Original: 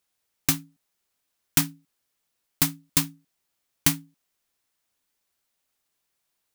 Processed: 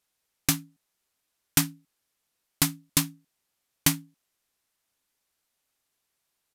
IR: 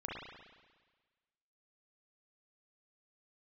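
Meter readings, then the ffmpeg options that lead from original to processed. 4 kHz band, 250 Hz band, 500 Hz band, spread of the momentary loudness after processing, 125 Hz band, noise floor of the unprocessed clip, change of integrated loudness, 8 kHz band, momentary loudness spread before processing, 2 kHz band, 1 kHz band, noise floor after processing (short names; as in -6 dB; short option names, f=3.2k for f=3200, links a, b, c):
0.0 dB, 0.0 dB, 0.0 dB, 8 LU, 0.0 dB, -78 dBFS, -1.5 dB, 0.0 dB, 9 LU, 0.0 dB, 0.0 dB, -80 dBFS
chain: -af "aresample=32000,aresample=44100"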